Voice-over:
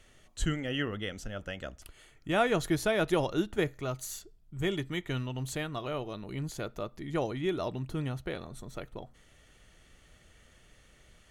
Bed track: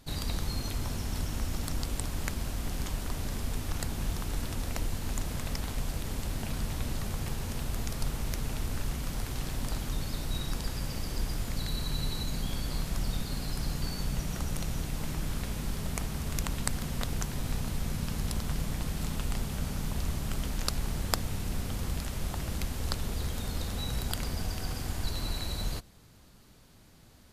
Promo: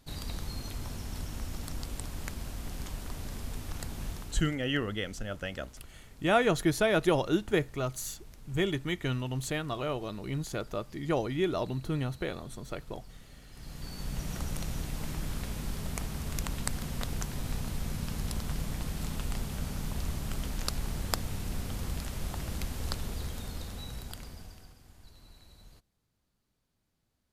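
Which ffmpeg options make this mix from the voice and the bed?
-filter_complex "[0:a]adelay=3950,volume=2dB[a];[1:a]volume=12.5dB,afade=t=out:st=4.06:d=0.54:silence=0.188365,afade=t=in:st=13.51:d=0.8:silence=0.133352,afade=t=out:st=22.88:d=1.88:silence=0.1[b];[a][b]amix=inputs=2:normalize=0"

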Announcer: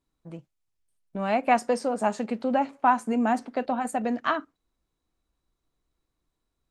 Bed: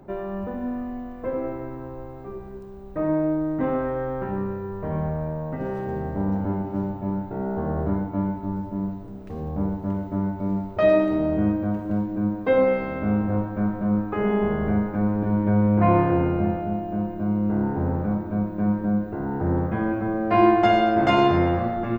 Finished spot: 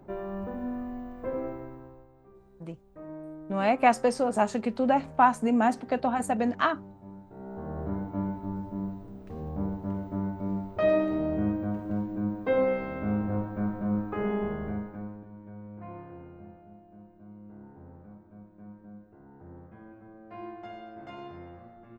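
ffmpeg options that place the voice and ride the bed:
-filter_complex "[0:a]adelay=2350,volume=0.5dB[a];[1:a]volume=8dB,afade=t=out:st=1.4:d=0.67:silence=0.199526,afade=t=in:st=7.25:d=0.93:silence=0.223872,afade=t=out:st=14.17:d=1.11:silence=0.112202[b];[a][b]amix=inputs=2:normalize=0"

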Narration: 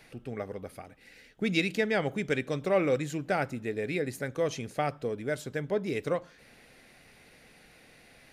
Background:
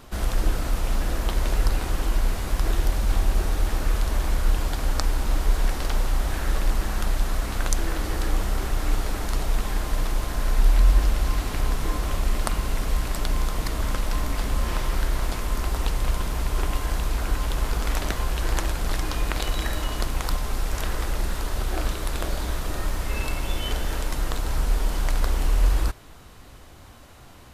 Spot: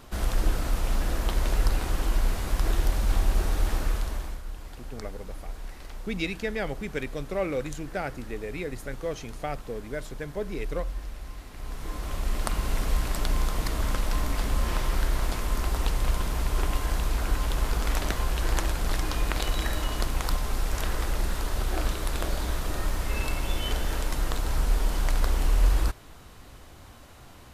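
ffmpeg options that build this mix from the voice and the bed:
-filter_complex "[0:a]adelay=4650,volume=-3dB[a];[1:a]volume=13dB,afade=t=out:st=3.74:d=0.68:silence=0.188365,afade=t=in:st=11.54:d=1.21:silence=0.177828[b];[a][b]amix=inputs=2:normalize=0"

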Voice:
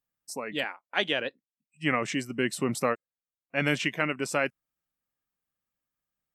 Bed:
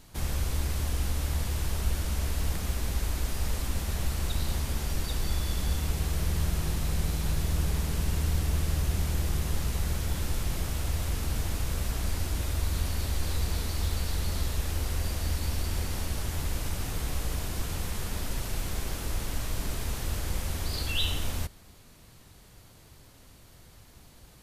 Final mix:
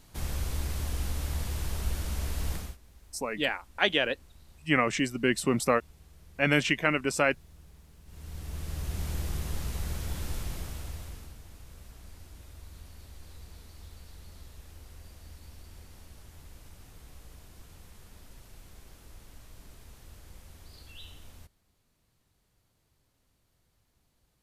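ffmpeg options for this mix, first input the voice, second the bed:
-filter_complex "[0:a]adelay=2850,volume=2dB[a];[1:a]volume=18.5dB,afade=t=out:st=2.55:d=0.22:silence=0.0707946,afade=t=in:st=8.05:d=1.06:silence=0.0841395,afade=t=out:st=10.35:d=1.02:silence=0.188365[b];[a][b]amix=inputs=2:normalize=0"

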